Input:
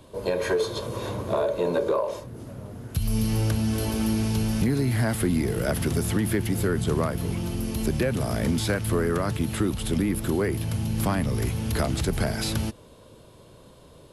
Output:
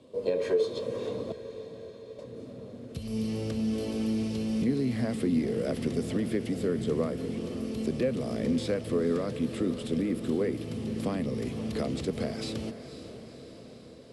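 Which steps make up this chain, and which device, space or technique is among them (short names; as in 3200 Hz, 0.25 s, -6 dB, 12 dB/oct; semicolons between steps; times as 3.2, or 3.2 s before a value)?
car door speaker (speaker cabinet 97–8400 Hz, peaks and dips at 100 Hz -5 dB, 250 Hz +8 dB, 480 Hz +10 dB, 900 Hz -7 dB, 1500 Hz -8 dB, 6500 Hz -5 dB); 1.32–2.19 inverse Chebyshev band-stop 290–7200 Hz, stop band 50 dB; diffused feedback echo 0.506 s, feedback 64%, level -12 dB; gain -7.5 dB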